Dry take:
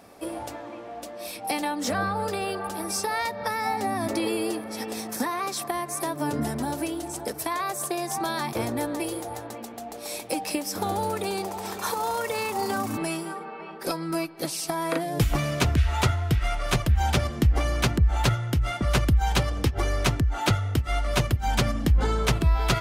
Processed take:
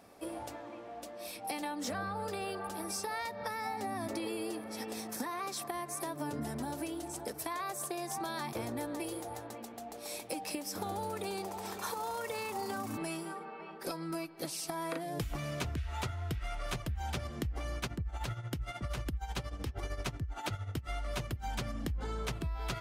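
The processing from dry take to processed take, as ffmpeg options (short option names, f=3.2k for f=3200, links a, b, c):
-filter_complex "[0:a]asplit=3[a][b][c];[a]afade=t=out:st=17.75:d=0.02[d];[b]tremolo=f=13:d=0.69,afade=t=in:st=17.75:d=0.02,afade=t=out:st=20.84:d=0.02[e];[c]afade=t=in:st=20.84:d=0.02[f];[d][e][f]amix=inputs=3:normalize=0,acompressor=threshold=-26dB:ratio=6,volume=-7.5dB"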